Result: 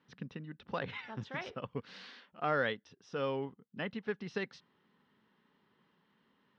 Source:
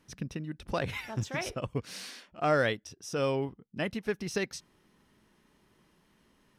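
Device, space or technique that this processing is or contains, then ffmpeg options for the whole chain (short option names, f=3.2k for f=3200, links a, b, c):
kitchen radio: -af "highpass=180,equalizer=f=330:t=q:w=4:g=-8,equalizer=f=640:t=q:w=4:g=-7,equalizer=f=2.4k:t=q:w=4:g=-6,lowpass=f=3.7k:w=0.5412,lowpass=f=3.7k:w=1.3066,volume=-2.5dB"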